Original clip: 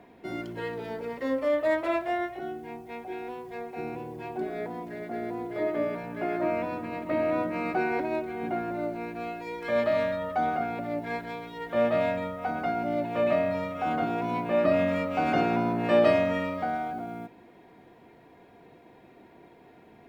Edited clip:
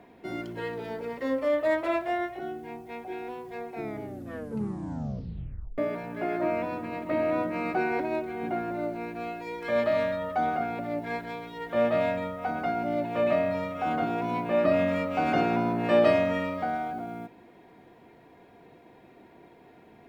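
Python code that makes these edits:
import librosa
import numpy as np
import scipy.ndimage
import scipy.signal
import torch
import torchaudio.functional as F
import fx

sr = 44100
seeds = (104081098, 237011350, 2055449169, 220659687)

y = fx.edit(x, sr, fx.tape_stop(start_s=3.71, length_s=2.07), tone=tone)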